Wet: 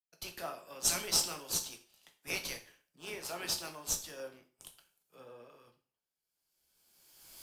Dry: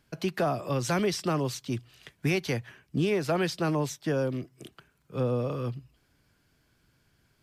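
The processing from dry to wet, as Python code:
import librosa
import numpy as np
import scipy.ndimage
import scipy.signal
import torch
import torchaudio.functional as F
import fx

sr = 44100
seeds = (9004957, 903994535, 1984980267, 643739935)

p1 = fx.recorder_agc(x, sr, target_db=-23.5, rise_db_per_s=16.0, max_gain_db=30)
p2 = np.diff(p1, prepend=0.0)
p3 = fx.sample_hold(p2, sr, seeds[0], rate_hz=2100.0, jitter_pct=0)
p4 = p2 + (p3 * 10.0 ** (-8.5 / 20.0))
p5 = fx.rev_plate(p4, sr, seeds[1], rt60_s=0.51, hf_ratio=1.0, predelay_ms=0, drr_db=4.0)
y = fx.band_widen(p5, sr, depth_pct=100)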